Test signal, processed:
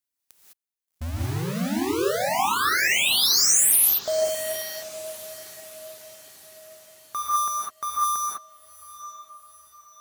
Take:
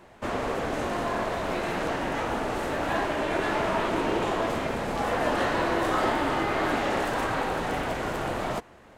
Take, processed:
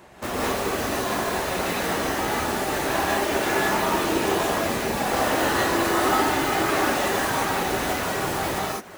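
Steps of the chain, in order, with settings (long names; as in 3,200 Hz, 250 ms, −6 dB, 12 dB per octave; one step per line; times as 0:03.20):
in parallel at −9 dB: wrap-around overflow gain 28 dB
on the sum: high-pass filter 42 Hz
on a send: feedback delay with all-pass diffusion 781 ms, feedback 55%, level −15 dB
on the sum: reverb reduction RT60 1.1 s
high-shelf EQ 5,600 Hz +7.5 dB
reverb whose tail is shaped and stops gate 230 ms rising, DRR −5 dB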